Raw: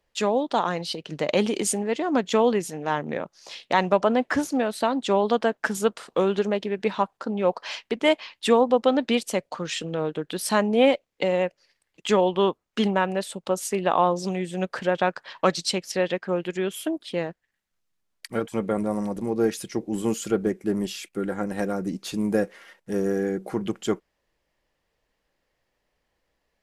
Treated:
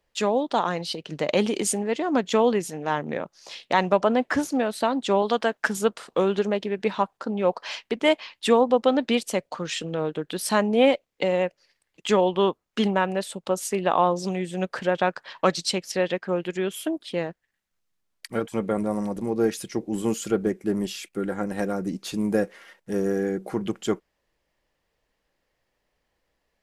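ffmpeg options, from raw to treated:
-filter_complex "[0:a]asettb=1/sr,asplit=3[a][b][c];[a]atrim=end=5.224[d];[b]atrim=start=5.22:end=5.68,asetpts=PTS-STARTPTS,afade=t=in:d=0.004:c=qsin,afade=t=out:st=0.456:d=0.004:c=qsin,tiltshelf=f=830:g=-3.5[e];[c]atrim=start=5.676[f];[d][e]acrossfade=d=0.004:c1=hsin:c2=qsin[g];[g][f]acrossfade=d=0.004:c1=qsin:c2=hsin"

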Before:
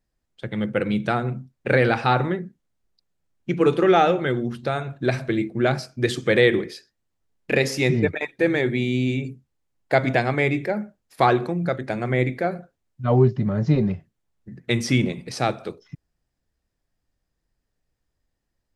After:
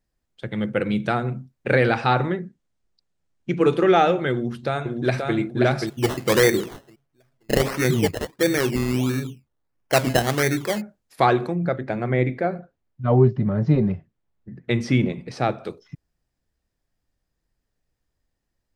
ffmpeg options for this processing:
-filter_complex "[0:a]asettb=1/sr,asplit=3[a][b][c];[a]atrim=end=1.934[d];[b]atrim=start=1.93:end=3.6,asetpts=PTS-STARTPTS,afade=t=in:d=0.004:c=qsin,afade=t=out:st=1.666:d=0.004:c=qsin,lowpass=f=9.4k:w=0.5412,lowpass=f=9.4k:w=1.3066[e];[c]atrim=start=3.596[f];[d][e]acrossfade=d=0.004:c1=hsin:c2=qsin[g];[g][f]acrossfade=d=0.004:c1=qsin:c2=hsin,asplit=2[h][i];[i]afade=t=in:st=4.32:d=0.01,afade=t=out:st=5.36:d=0.01,aecho=0:1:530|1060|1590|2120:0.668344|0.167086|0.0417715|0.0104429[j];[h][j]amix=inputs=2:normalize=0,asplit=3[k][l][m];[k]afade=t=out:st=5.86:d=0.02[n];[l]acrusher=samples=15:mix=1:aa=0.000001:lfo=1:lforange=9:lforate=1.5,afade=t=in:st=5.86:d=0.02,afade=t=out:st=10.8:d=0.02[o];[m]afade=t=in:st=10.8:d=0.02[p];[n][o][p]amix=inputs=3:normalize=0,asettb=1/sr,asplit=3[q][r][s];[q]atrim=end=11.554[t];[r]atrim=start=11.55:end=15.65,asetpts=PTS-STARTPTS,afade=t=in:d=0.004:c=qsin,afade=t=out:st=4.096:d=0.004:c=qsin,aemphasis=mode=reproduction:type=75fm[u];[s]atrim=start=15.646[v];[t][u]acrossfade=d=0.004:c1=hsin:c2=qsin[w];[w][v]acrossfade=d=0.004:c1=qsin:c2=hsin"

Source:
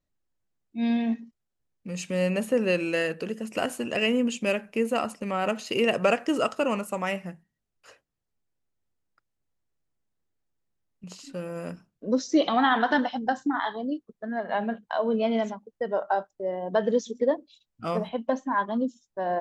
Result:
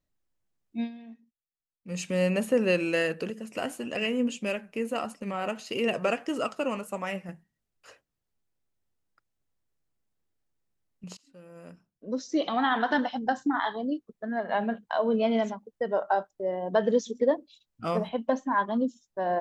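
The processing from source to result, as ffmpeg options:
-filter_complex "[0:a]asettb=1/sr,asplit=3[a][b][c];[a]atrim=end=3.304[d];[b]atrim=start=3.3:end=7.29,asetpts=PTS-STARTPTS,afade=t=in:d=0.004:c=qsin,afade=t=out:st=3.986:d=0.004:c=qsin,flanger=delay=3.3:depth=5.2:regen=72:speed=1.6:shape=triangular[e];[c]atrim=start=7.286[f];[d][e]acrossfade=d=0.004:c1=hsin:c2=qsin[g];[g][f]acrossfade=d=0.004:c1=qsin:c2=hsin,asplit=4[h][i][j][k];[h]atrim=end=0.92,asetpts=PTS-STARTPTS,afade=t=out:st=0.8:d=0.12:c=qua:silence=0.1[l];[i]atrim=start=0.92:end=1.8,asetpts=PTS-STARTPTS,volume=-20dB[m];[j]atrim=start=1.8:end=11.17,asetpts=PTS-STARTPTS,afade=t=in:d=0.12:c=qua:silence=0.1,afade=t=out:st=9.366:d=0.004:c=hsin:silence=0.0707946[n];[k]atrim=start=11.17,asetpts=PTS-STARTPTS,afade=t=in:d=2.38:silence=0.0707946[o];[l][m][n][o]concat=n=4:v=0:a=1"

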